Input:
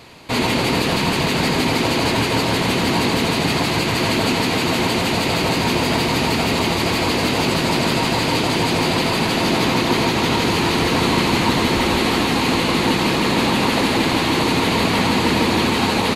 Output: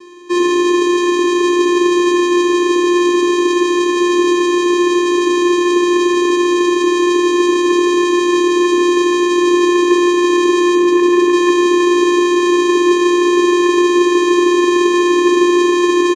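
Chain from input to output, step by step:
0:10.73–0:11.33: spectral envelope exaggerated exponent 1.5
channel vocoder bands 4, square 352 Hz
ambience of single reflections 38 ms −13.5 dB, 48 ms −11.5 dB, 67 ms −15 dB
level +7 dB

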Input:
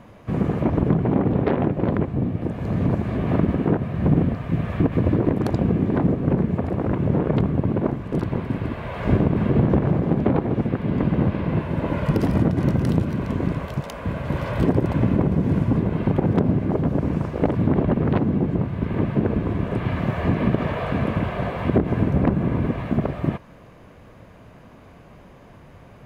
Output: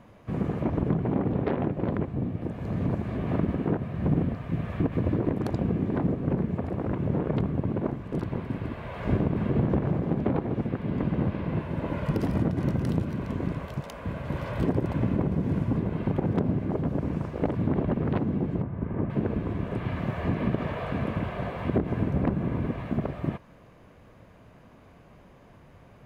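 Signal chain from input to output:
0:18.62–0:19.10: low-pass filter 1,500 Hz 12 dB per octave
level −6.5 dB

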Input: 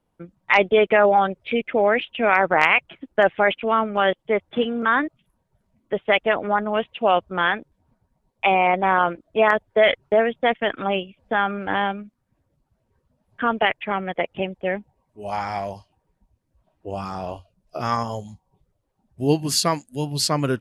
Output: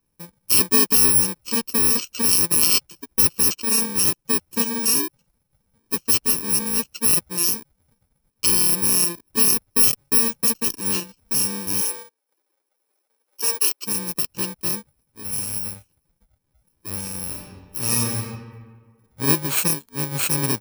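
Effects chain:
samples in bit-reversed order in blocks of 64 samples
0:11.81–0:13.83: Butterworth high-pass 330 Hz 36 dB per octave
0:17.26–0:18.18: thrown reverb, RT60 1.6 s, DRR −2 dB

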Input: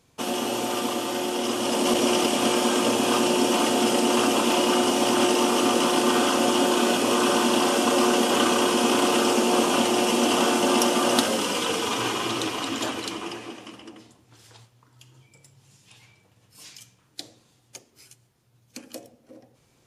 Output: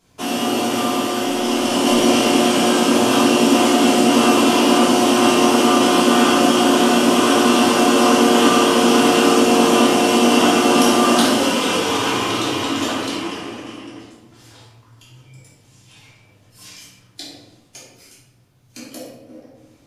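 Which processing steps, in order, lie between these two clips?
rectangular room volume 340 cubic metres, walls mixed, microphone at 3.1 metres
level −2 dB

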